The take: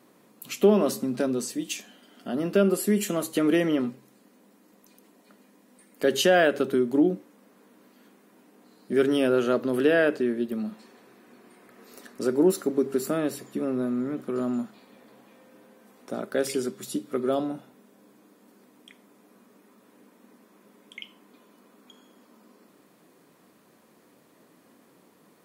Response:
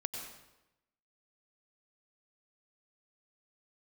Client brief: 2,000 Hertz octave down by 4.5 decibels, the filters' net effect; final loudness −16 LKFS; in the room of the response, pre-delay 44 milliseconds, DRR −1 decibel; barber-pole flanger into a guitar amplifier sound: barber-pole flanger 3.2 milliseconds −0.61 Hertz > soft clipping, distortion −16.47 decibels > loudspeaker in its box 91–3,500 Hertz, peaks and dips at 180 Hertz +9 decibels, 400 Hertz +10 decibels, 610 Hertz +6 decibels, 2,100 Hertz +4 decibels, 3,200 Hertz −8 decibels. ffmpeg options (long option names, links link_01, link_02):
-filter_complex "[0:a]equalizer=frequency=2000:width_type=o:gain=-7,asplit=2[link_01][link_02];[1:a]atrim=start_sample=2205,adelay=44[link_03];[link_02][link_03]afir=irnorm=-1:irlink=0,volume=0dB[link_04];[link_01][link_04]amix=inputs=2:normalize=0,asplit=2[link_05][link_06];[link_06]adelay=3.2,afreqshift=-0.61[link_07];[link_05][link_07]amix=inputs=2:normalize=1,asoftclip=threshold=-15.5dB,highpass=91,equalizer=frequency=180:width_type=q:width=4:gain=9,equalizer=frequency=400:width_type=q:width=4:gain=10,equalizer=frequency=610:width_type=q:width=4:gain=6,equalizer=frequency=2100:width_type=q:width=4:gain=4,equalizer=frequency=3200:width_type=q:width=4:gain=-8,lowpass=frequency=3500:width=0.5412,lowpass=frequency=3500:width=1.3066,volume=4dB"